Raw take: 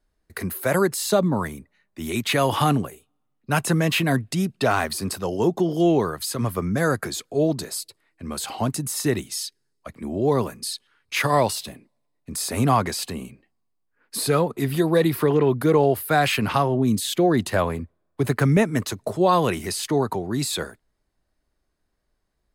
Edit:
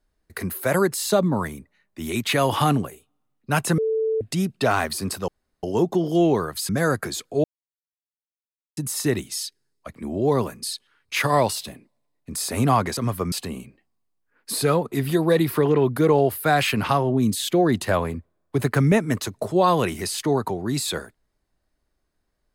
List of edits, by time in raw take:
3.78–4.21 s: bleep 442 Hz -19.5 dBFS
5.28 s: insert room tone 0.35 s
6.34–6.69 s: move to 12.97 s
7.44–8.77 s: mute

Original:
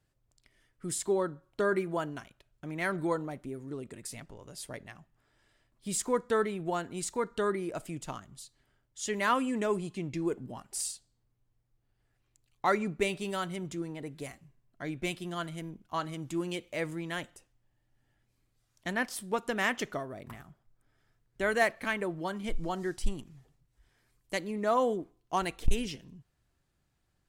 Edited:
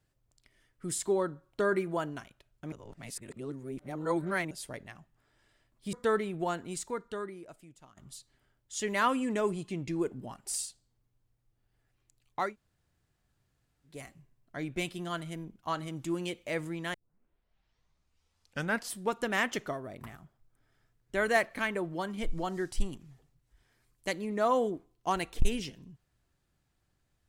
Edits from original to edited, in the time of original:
2.72–4.51 s: reverse
5.93–6.19 s: delete
6.84–8.23 s: fade out quadratic, to -18 dB
12.70–14.21 s: room tone, crossfade 0.24 s
17.20 s: tape start 2.00 s

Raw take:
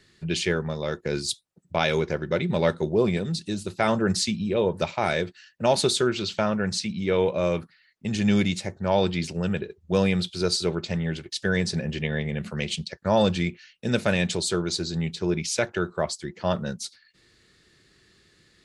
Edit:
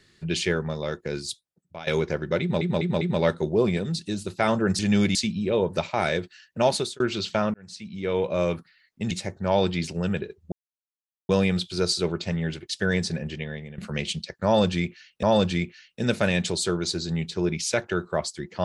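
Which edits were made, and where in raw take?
0.75–1.87 s: fade out, to -18 dB
2.41 s: stutter 0.20 s, 4 plays
5.71–6.04 s: fade out
6.58–7.44 s: fade in
8.15–8.51 s: move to 4.19 s
9.92 s: insert silence 0.77 s
11.61–12.41 s: fade out, to -14.5 dB
13.08–13.86 s: loop, 2 plays

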